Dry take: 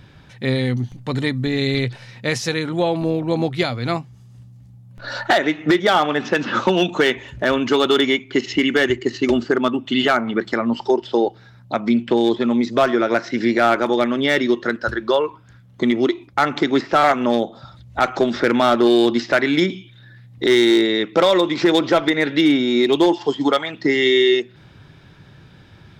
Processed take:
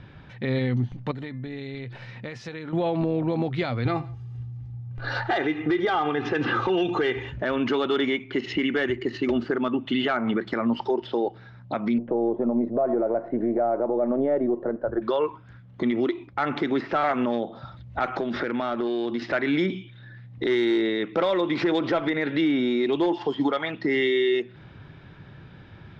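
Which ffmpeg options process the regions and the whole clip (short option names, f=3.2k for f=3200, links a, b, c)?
-filter_complex "[0:a]asettb=1/sr,asplit=3[a][b][c];[a]atrim=end=1.114[d];[b]atrim=start=1.11:end=2.73,asetpts=PTS-STARTPTS,afade=t=in:d=0.004:c=qsin,afade=t=out:st=1.616:d=0.004:c=qsin,bandreject=f=347.7:t=h:w=4,bandreject=f=695.4:t=h:w=4,bandreject=f=1.0431k:t=h:w=4,bandreject=f=1.3908k:t=h:w=4,bandreject=f=1.7385k:t=h:w=4,bandreject=f=2.0862k:t=h:w=4,bandreject=f=2.4339k:t=h:w=4,bandreject=f=2.7816k:t=h:w=4,acompressor=threshold=-31dB:ratio=8:attack=3.2:release=140:knee=1:detection=peak[e];[c]atrim=start=2.726[f];[d][e]acrossfade=d=0.004:c1=hsin:c2=qsin[g];[g][f]acrossfade=d=0.004:c1=qsin:c2=hsin,asettb=1/sr,asplit=3[h][i][j];[h]atrim=end=3.854[k];[i]atrim=start=3.85:end=7.32,asetpts=PTS-STARTPTS,afade=t=in:d=0.004:c=qsin,afade=t=out:st=3.466:d=0.004:c=qsin,equalizer=f=110:w=1.3:g=8.5,aecho=1:1:2.5:0.67,atrim=end_sample=153027,aecho=1:1:86|172:0.0708|0.0212,atrim=end_sample=153027[l];[j]atrim=start=7.316[m];[k][l]acrossfade=d=0.004:c1=hsin:c2=qsin[n];[n][m]acrossfade=d=0.004:c1=qsin:c2=hsin,asettb=1/sr,asplit=3[o][p][q];[o]atrim=end=11.984[r];[p]atrim=start=11.98:end=15.02,asetpts=PTS-STARTPTS,afade=t=in:d=0.004:c=qsin,afade=t=out:st=3.036:d=0.004:c=qsin,aeval=exprs='if(lt(val(0),0),0.708*val(0),val(0))':c=same,lowpass=f=630:t=q:w=2.5,lowshelf=f=130:g=-7[s];[q]atrim=start=15.016[t];[r][s]acrossfade=d=0.004:c1=hsin:c2=qsin[u];[u][t]acrossfade=d=0.004:c1=qsin:c2=hsin,asettb=1/sr,asplit=3[v][w][x];[v]atrim=end=18.084[y];[w]atrim=start=18.08:end=19.22,asetpts=PTS-STARTPTS,afade=t=in:d=0.004:c=qsin,afade=t=out:st=1.136:d=0.004:c=qsin,equalizer=f=7.7k:t=o:w=0.26:g=-3.5,acompressor=threshold=-23dB:ratio=10:attack=3.2:release=140:knee=1:detection=peak[z];[x]atrim=start=19.216[aa];[y][z]acrossfade=d=0.004:c1=hsin:c2=qsin[ab];[ab][aa]acrossfade=d=0.004:c1=qsin:c2=hsin,lowpass=2.9k,alimiter=limit=-16dB:level=0:latency=1:release=86"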